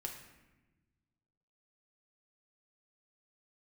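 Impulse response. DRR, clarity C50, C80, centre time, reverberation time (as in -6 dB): 0.0 dB, 6.5 dB, 8.5 dB, 31 ms, 1.1 s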